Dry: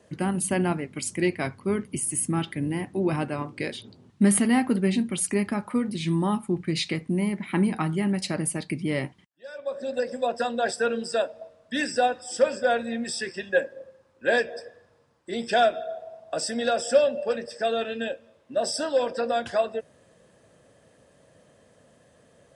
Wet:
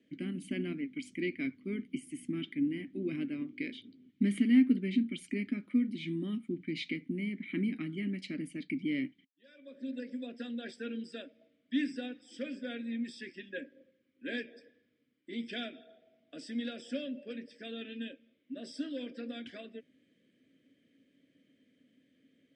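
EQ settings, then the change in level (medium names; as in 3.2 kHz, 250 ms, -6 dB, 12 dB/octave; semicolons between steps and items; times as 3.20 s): vowel filter i; +3.0 dB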